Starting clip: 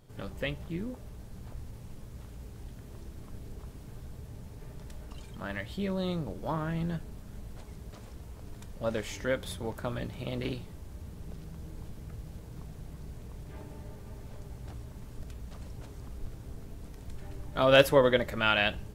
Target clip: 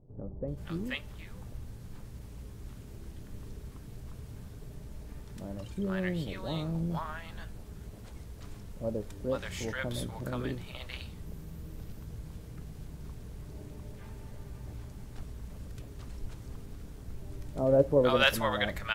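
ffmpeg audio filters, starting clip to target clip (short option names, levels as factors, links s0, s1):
-filter_complex "[0:a]asettb=1/sr,asplit=3[s0][s1][s2];[s0]atrim=end=10.784[s3];[s1]atrim=start=10.78:end=11.58,asetpts=PTS-STARTPTS,afade=t=in:d=0.004:c=qsin,afade=t=out:st=0.796:d=0.004:c=qsin,equalizer=f=14000:w=5.5:g=11[s4];[s2]atrim=start=11.576[s5];[s3][s4]acrossfade=d=0.004:c1=hsin:c2=qsin[s6];[s6][s5]acrossfade=d=0.004:c1=qsin:c2=hsin,acrossover=split=720[s7][s8];[s8]adelay=480[s9];[s7][s9]amix=inputs=2:normalize=0"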